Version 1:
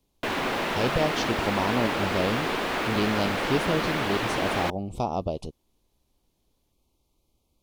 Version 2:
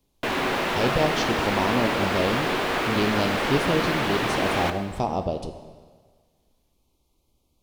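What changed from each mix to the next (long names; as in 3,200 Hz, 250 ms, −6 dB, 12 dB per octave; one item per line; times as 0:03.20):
reverb: on, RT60 1.6 s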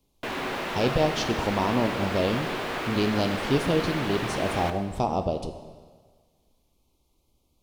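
background −6.0 dB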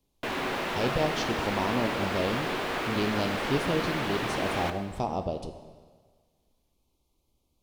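speech −4.5 dB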